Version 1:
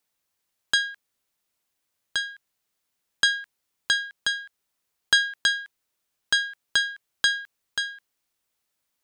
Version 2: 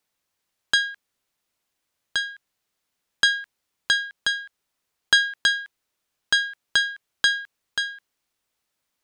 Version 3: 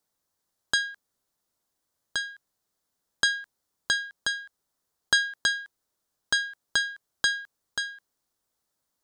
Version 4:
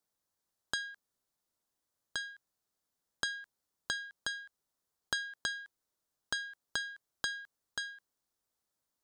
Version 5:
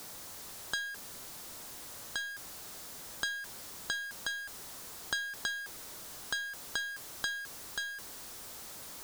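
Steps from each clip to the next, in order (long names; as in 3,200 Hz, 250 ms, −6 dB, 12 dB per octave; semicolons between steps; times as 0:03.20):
high-shelf EQ 8,100 Hz −6 dB; level +2.5 dB
parametric band 2,500 Hz −12 dB 0.95 octaves
downward compressor 2.5 to 1, threshold −28 dBFS, peak gain reduction 8 dB; level −6 dB
converter with a step at zero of −38.5 dBFS; level −1 dB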